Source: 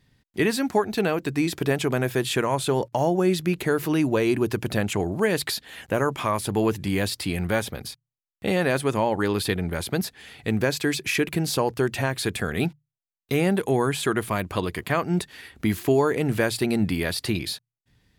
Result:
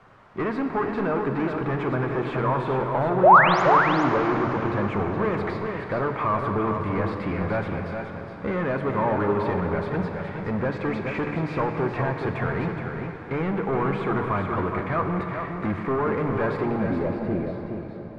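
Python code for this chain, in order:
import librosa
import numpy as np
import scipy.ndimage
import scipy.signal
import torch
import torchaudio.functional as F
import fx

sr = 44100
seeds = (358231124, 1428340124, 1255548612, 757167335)

p1 = fx.peak_eq(x, sr, hz=2200.0, db=8.5, octaves=0.31)
p2 = 10.0 ** (-26.5 / 20.0) * np.tanh(p1 / 10.0 ** (-26.5 / 20.0))
p3 = fx.quant_dither(p2, sr, seeds[0], bits=6, dither='triangular')
p4 = p2 + F.gain(torch.from_numpy(p3), -11.0).numpy()
p5 = fx.spec_paint(p4, sr, seeds[1], shape='rise', start_s=3.23, length_s=0.39, low_hz=500.0, high_hz=7500.0, level_db=-16.0)
p6 = fx.filter_sweep_lowpass(p5, sr, from_hz=1200.0, to_hz=600.0, start_s=16.54, end_s=17.06, q=1.8)
p7 = p6 + fx.echo_single(p6, sr, ms=420, db=-6.5, dry=0)
p8 = fx.rev_plate(p7, sr, seeds[2], rt60_s=4.5, hf_ratio=0.85, predelay_ms=0, drr_db=4.5)
y = F.gain(torch.from_numpy(p8), 1.0).numpy()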